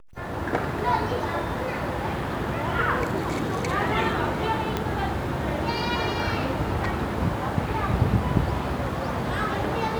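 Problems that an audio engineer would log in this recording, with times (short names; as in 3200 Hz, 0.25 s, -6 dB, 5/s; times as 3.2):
4.77 pop -11 dBFS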